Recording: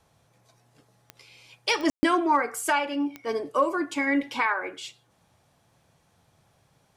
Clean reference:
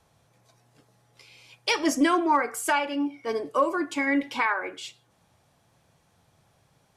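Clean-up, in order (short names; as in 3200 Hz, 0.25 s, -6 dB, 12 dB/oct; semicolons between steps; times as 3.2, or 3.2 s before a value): de-click; room tone fill 1.9–2.03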